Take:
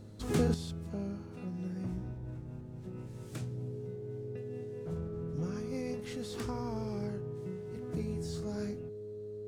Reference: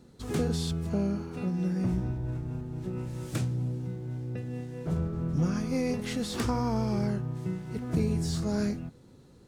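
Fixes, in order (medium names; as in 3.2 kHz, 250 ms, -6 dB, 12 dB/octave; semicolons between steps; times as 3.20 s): de-hum 104.8 Hz, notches 6; band-stop 420 Hz, Q 30; gain correction +9.5 dB, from 0.54 s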